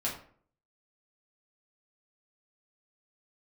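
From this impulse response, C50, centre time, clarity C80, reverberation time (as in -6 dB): 7.0 dB, 27 ms, 11.0 dB, 0.50 s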